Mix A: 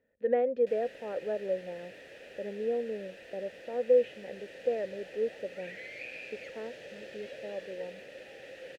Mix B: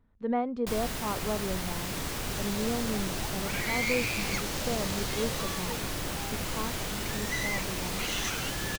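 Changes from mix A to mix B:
speech -12.0 dB; second sound: entry -2.10 s; master: remove vowel filter e

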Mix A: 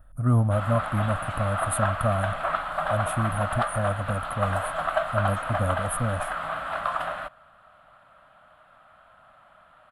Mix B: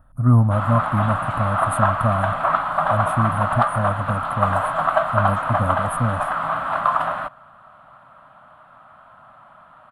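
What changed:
speech -3.5 dB; master: add graphic EQ 125/250/1000 Hz +9/+8/+11 dB

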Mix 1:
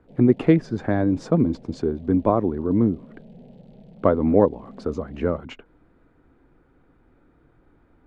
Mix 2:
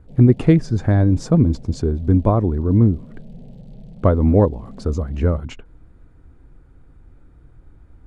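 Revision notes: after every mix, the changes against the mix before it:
master: remove three-band isolator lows -16 dB, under 190 Hz, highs -13 dB, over 3900 Hz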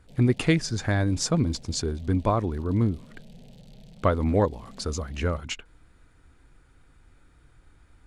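master: add tilt shelf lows -10 dB, about 1200 Hz

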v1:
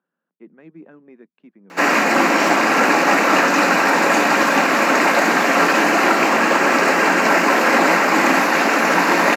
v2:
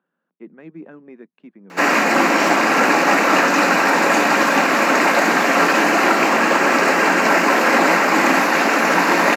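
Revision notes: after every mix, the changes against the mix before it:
speech +4.5 dB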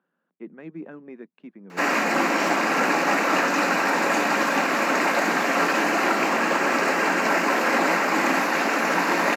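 background -6.5 dB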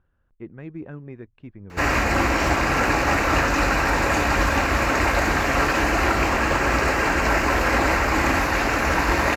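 master: remove Chebyshev high-pass 170 Hz, order 6

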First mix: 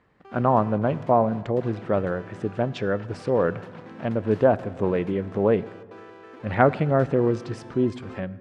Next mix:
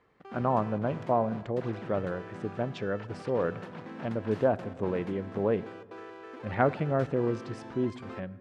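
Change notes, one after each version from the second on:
speech -7.0 dB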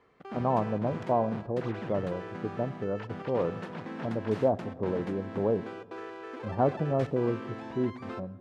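speech: add steep low-pass 1100 Hz; background +3.5 dB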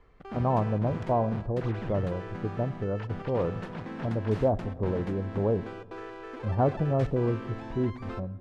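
master: remove HPF 160 Hz 12 dB/oct

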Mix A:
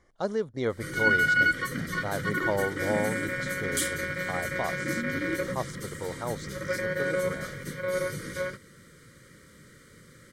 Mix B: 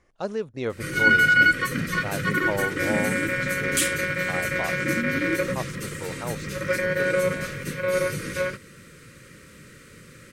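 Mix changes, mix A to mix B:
background +5.5 dB; master: remove Butterworth band-stop 2600 Hz, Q 4.4

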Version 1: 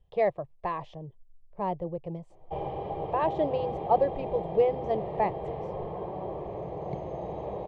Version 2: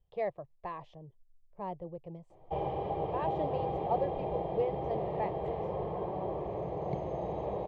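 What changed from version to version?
speech -8.5 dB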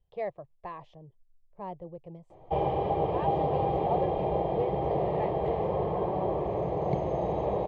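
background +6.5 dB

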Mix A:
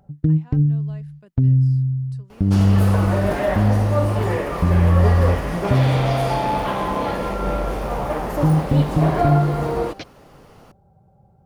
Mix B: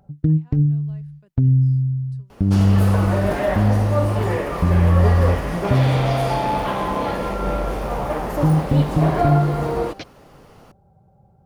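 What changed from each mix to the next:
speech -7.5 dB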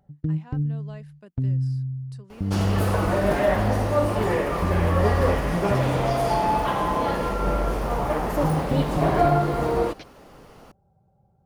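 speech +10.0 dB; first sound -8.5 dB

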